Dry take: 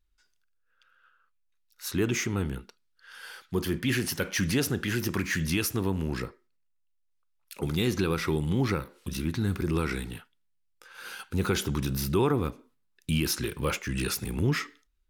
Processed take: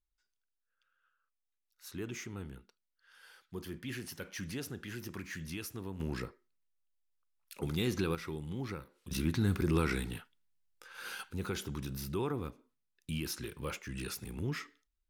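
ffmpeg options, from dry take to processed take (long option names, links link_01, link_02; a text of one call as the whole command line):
ffmpeg -i in.wav -af "asetnsamples=nb_out_samples=441:pad=0,asendcmd='6 volume volume -6dB;8.15 volume volume -13dB;9.11 volume volume -2dB;11.32 volume volume -10.5dB',volume=-14dB" out.wav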